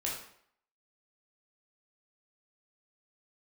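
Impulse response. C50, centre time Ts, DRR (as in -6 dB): 3.5 dB, 42 ms, -4.0 dB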